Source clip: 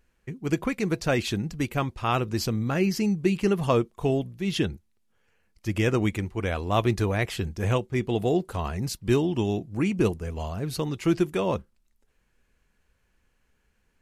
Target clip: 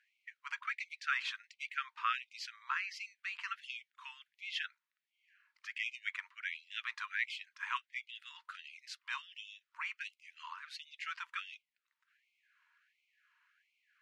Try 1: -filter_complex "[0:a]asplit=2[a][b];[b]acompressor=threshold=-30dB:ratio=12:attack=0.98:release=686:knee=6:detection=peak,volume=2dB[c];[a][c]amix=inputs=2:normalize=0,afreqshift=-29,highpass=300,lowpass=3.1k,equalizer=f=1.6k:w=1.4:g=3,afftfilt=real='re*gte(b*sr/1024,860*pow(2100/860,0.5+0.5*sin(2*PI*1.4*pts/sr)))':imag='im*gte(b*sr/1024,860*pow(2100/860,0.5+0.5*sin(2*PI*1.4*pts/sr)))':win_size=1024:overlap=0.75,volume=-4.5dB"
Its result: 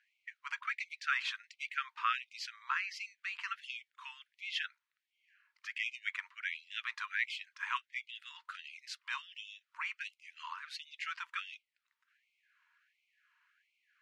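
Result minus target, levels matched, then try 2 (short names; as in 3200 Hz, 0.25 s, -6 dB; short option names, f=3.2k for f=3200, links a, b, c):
compressor: peak gain reduction -10 dB
-filter_complex "[0:a]asplit=2[a][b];[b]acompressor=threshold=-41dB:ratio=12:attack=0.98:release=686:knee=6:detection=peak,volume=2dB[c];[a][c]amix=inputs=2:normalize=0,afreqshift=-29,highpass=300,lowpass=3.1k,equalizer=f=1.6k:w=1.4:g=3,afftfilt=real='re*gte(b*sr/1024,860*pow(2100/860,0.5+0.5*sin(2*PI*1.4*pts/sr)))':imag='im*gte(b*sr/1024,860*pow(2100/860,0.5+0.5*sin(2*PI*1.4*pts/sr)))':win_size=1024:overlap=0.75,volume=-4.5dB"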